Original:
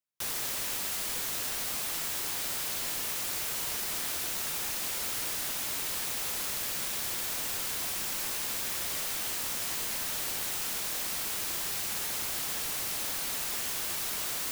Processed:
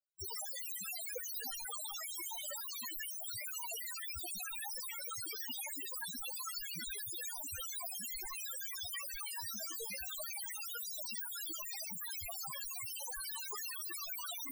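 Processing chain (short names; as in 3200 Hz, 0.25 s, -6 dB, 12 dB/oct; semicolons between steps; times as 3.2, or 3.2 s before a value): loudest bins only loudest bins 4; 9.24–10.1 doubler 20 ms -10 dB; gain +11.5 dB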